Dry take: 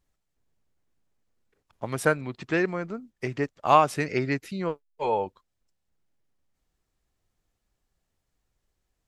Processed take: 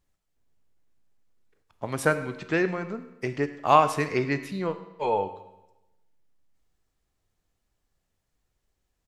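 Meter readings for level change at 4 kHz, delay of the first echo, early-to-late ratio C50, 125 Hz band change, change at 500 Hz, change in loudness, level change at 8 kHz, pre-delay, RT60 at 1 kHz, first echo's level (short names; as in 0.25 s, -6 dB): +0.5 dB, 0.103 s, 12.0 dB, 0.0 dB, +0.5 dB, +0.5 dB, +0.5 dB, 11 ms, 1.0 s, -18.5 dB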